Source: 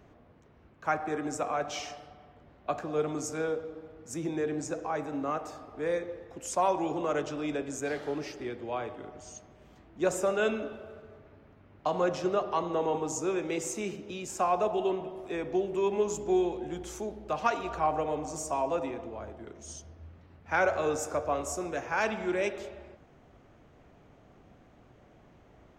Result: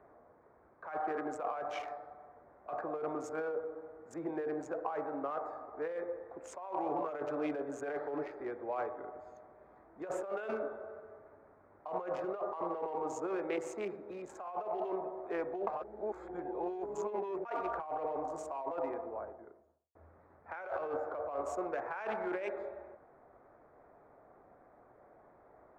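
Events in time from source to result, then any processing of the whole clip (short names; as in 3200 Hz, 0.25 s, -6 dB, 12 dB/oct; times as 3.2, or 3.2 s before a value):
6.89–8.26 comb 6.9 ms, depth 54%
15.67–17.45 reverse
18.99–19.95 studio fade out
20.78–21.43 air absorption 170 m
whole clip: Wiener smoothing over 15 samples; three-band isolator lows -18 dB, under 420 Hz, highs -18 dB, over 2400 Hz; negative-ratio compressor -37 dBFS, ratio -1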